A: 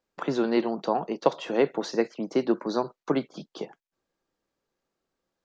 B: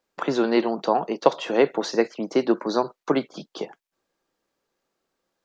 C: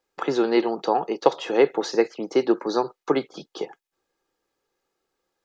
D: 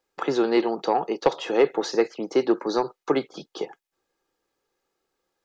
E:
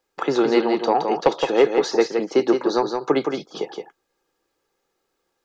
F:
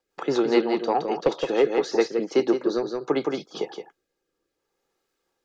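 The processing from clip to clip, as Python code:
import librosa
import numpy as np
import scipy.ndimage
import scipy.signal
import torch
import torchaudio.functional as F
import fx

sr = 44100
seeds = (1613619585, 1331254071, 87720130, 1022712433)

y1 = fx.low_shelf(x, sr, hz=200.0, db=-8.0)
y1 = y1 * librosa.db_to_amplitude(5.5)
y2 = y1 + 0.41 * np.pad(y1, (int(2.4 * sr / 1000.0), 0))[:len(y1)]
y2 = y2 * librosa.db_to_amplitude(-1.0)
y3 = 10.0 ** (-8.0 / 20.0) * np.tanh(y2 / 10.0 ** (-8.0 / 20.0))
y4 = y3 + 10.0 ** (-5.5 / 20.0) * np.pad(y3, (int(168 * sr / 1000.0), 0))[:len(y3)]
y4 = y4 * librosa.db_to_amplitude(3.0)
y5 = fx.rotary_switch(y4, sr, hz=5.0, then_hz=0.65, switch_at_s=1.67)
y5 = y5 * librosa.db_to_amplitude(-1.5)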